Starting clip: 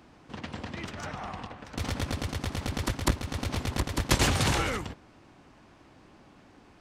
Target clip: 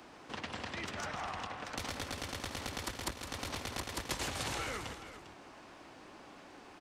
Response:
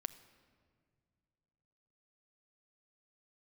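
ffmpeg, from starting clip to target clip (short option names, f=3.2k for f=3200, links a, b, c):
-filter_complex "[0:a]bass=f=250:g=-12,treble=f=4k:g=1,acrossover=split=150|1000[a][b][c];[a]acompressor=threshold=-51dB:ratio=4[d];[b]acompressor=threshold=-49dB:ratio=4[e];[c]acompressor=threshold=-45dB:ratio=4[f];[d][e][f]amix=inputs=3:normalize=0,asplit=2[g][h];[h]aecho=0:1:163|401:0.282|0.237[i];[g][i]amix=inputs=2:normalize=0,volume=4dB"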